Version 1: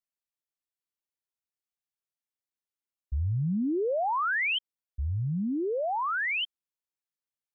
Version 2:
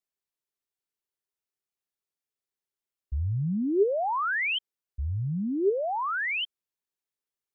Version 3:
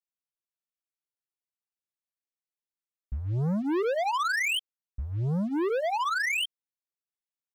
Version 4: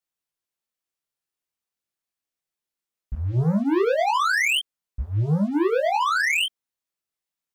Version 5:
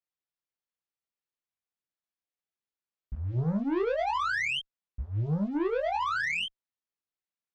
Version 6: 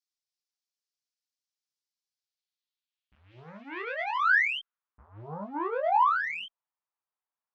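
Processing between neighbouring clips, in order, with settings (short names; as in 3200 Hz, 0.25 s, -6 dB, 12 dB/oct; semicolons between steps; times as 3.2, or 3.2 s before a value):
bell 400 Hz +10 dB 0.2 oct
comb 6 ms, depth 76%; sample leveller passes 3; gain -6.5 dB
chorus 0.39 Hz, delay 18.5 ms, depth 7.1 ms; gain +9 dB
in parallel at -8 dB: one-sided clip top -30 dBFS; on the sum: air absorption 110 m; gain -9 dB
band-pass sweep 5200 Hz -> 970 Hz, 2.11–5.3; gain +9 dB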